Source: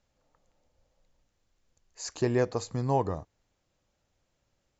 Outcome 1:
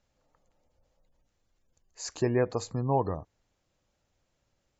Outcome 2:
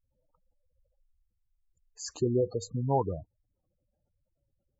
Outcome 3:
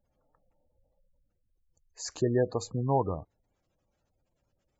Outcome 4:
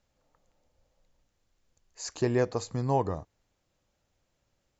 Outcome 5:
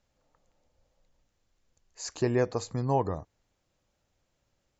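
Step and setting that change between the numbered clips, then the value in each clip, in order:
gate on every frequency bin, under each frame's peak: −35, −10, −20, −60, −45 decibels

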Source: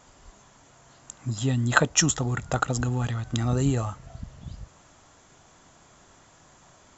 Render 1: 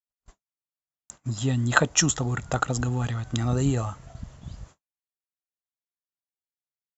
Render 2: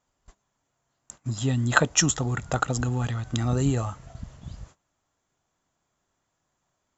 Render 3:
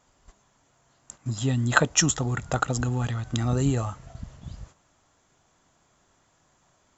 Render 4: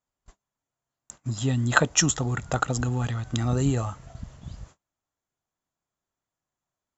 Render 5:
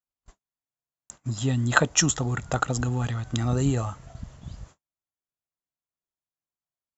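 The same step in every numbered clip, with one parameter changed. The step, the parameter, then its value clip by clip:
noise gate, range: −59, −22, −10, −34, −47 decibels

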